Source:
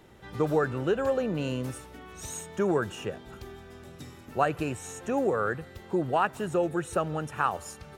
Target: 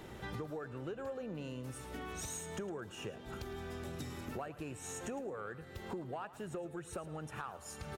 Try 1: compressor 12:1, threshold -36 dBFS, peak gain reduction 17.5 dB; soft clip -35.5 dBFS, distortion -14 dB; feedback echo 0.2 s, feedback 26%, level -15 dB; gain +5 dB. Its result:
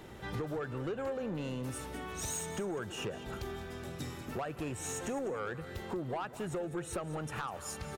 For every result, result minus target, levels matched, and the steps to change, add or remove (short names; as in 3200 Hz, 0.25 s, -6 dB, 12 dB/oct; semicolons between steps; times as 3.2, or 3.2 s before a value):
echo 91 ms late; compressor: peak gain reduction -7.5 dB
change: feedback echo 0.109 s, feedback 26%, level -15 dB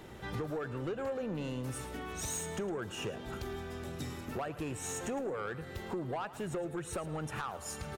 compressor: peak gain reduction -7.5 dB
change: compressor 12:1, threshold -44 dBFS, peak gain reduction 25 dB